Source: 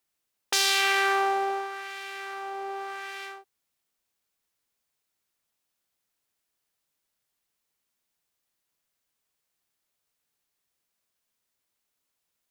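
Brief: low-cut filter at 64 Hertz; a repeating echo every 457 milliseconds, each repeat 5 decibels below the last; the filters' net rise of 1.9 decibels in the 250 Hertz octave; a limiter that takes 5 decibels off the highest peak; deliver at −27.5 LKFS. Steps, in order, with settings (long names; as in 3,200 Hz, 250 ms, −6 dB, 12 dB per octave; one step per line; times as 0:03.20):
high-pass filter 64 Hz
parametric band 250 Hz +5 dB
brickwall limiter −12 dBFS
repeating echo 457 ms, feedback 56%, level −5 dB
level −1 dB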